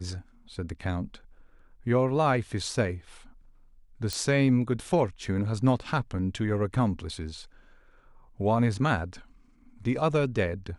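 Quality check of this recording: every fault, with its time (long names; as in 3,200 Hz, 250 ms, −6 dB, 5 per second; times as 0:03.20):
0:04.13: click −16 dBFS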